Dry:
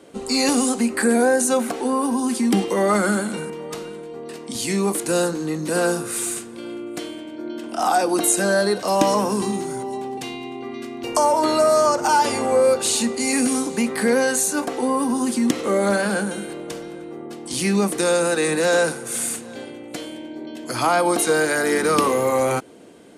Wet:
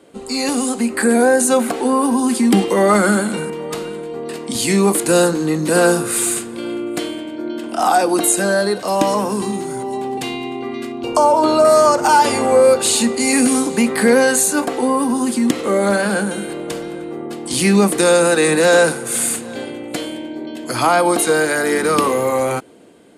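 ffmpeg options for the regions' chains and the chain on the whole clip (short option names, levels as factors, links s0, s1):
-filter_complex "[0:a]asettb=1/sr,asplit=3[s0][s1][s2];[s0]atrim=end=10.924[s3];[s1]atrim=start=10.92:end=11.65,asetpts=PTS-STARTPTS,afade=t=in:d=0.004:c=qsin,afade=t=out:st=0.726:d=0.004:c=qsin,lowpass=f=3900:p=1,equalizer=f=1900:w=4.6:g=-14[s4];[s2]atrim=start=11.646[s5];[s3][s4]acrossfade=d=0.004:c1=hsin:c2=qsin[s6];[s6][s5]acrossfade=d=0.004:c1=qsin:c2=hsin,equalizer=f=5800:t=o:w=0.25:g=-5.5,dynaudnorm=f=150:g=11:m=3.76,volume=0.891"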